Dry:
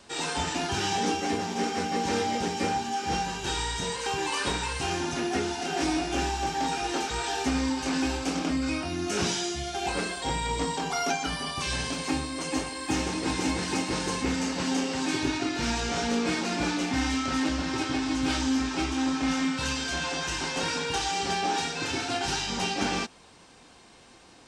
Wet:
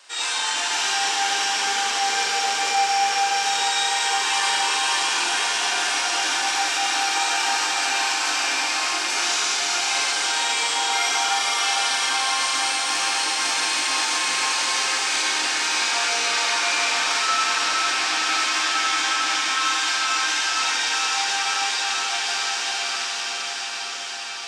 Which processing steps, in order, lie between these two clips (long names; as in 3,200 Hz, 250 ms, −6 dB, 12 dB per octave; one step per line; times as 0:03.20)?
fade-out on the ending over 5.55 s
high-pass filter 1,100 Hz 12 dB per octave
feedback delay with all-pass diffusion 545 ms, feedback 76%, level −3.5 dB
four-comb reverb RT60 3.1 s, combs from 29 ms, DRR −4 dB
in parallel at +1.5 dB: brickwall limiter −20 dBFS, peak gain reduction 7.5 dB
on the sum: flanger 0.5 Hz, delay 7.3 ms, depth 8.3 ms, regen −55%
level +2.5 dB